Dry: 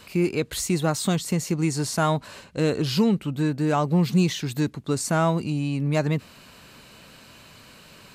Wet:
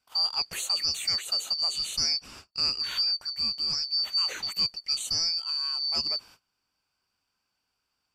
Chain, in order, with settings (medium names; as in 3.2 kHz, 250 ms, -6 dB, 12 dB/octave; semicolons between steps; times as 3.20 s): four frequency bands reordered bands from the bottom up 2341; band-stop 5.4 kHz, Q 27; gate -43 dBFS, range -25 dB; gain riding within 3 dB 0.5 s; trim -5.5 dB